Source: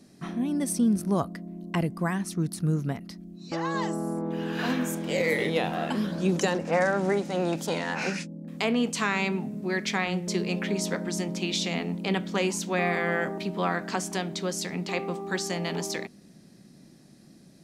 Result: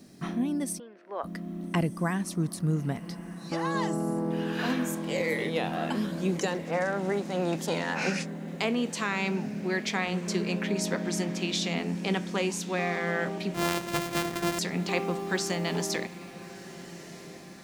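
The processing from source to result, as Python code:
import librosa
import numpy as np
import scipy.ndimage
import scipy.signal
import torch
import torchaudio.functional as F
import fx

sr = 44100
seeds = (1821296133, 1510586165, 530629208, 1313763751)

p1 = fx.sample_sort(x, sr, block=128, at=(13.54, 14.59))
p2 = fx.rider(p1, sr, range_db=5, speed_s=0.5)
p3 = fx.quant_dither(p2, sr, seeds[0], bits=12, dither='triangular')
p4 = fx.cabinet(p3, sr, low_hz=490.0, low_slope=24, high_hz=2800.0, hz=(720.0, 1200.0, 1800.0), db=(-4, -4, 5), at=(0.78, 1.23), fade=0.02)
p5 = p4 + fx.echo_diffused(p4, sr, ms=1300, feedback_pct=54, wet_db=-16.0, dry=0)
y = p5 * 10.0 ** (-1.5 / 20.0)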